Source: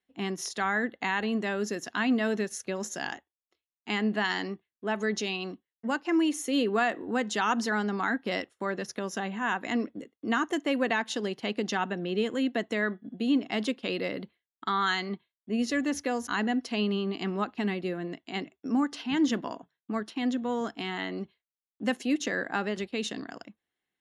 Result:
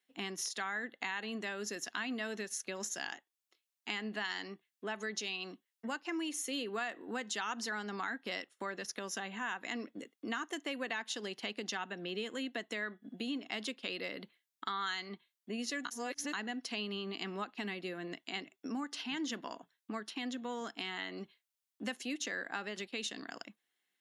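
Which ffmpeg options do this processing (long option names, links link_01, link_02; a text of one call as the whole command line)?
ffmpeg -i in.wav -filter_complex "[0:a]asplit=3[link_01][link_02][link_03];[link_01]atrim=end=15.852[link_04];[link_02]atrim=start=15.848:end=16.332,asetpts=PTS-STARTPTS,areverse[link_05];[link_03]atrim=start=16.328[link_06];[link_04][link_05]acrossfade=duration=0.004:curve1=hsin:curve2=hsin[link_07];[link_07][link_06]acrossfade=duration=0.004:curve1=hsin:curve2=hsin,highpass=230,equalizer=frequency=400:width=0.31:gain=-9,acompressor=threshold=-46dB:ratio=2.5,volume=6dB" out.wav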